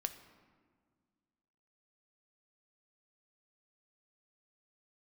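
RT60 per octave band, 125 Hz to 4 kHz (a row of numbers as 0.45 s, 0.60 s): 2.2 s, 2.3 s, 1.8 s, 1.7 s, 1.3 s, 0.95 s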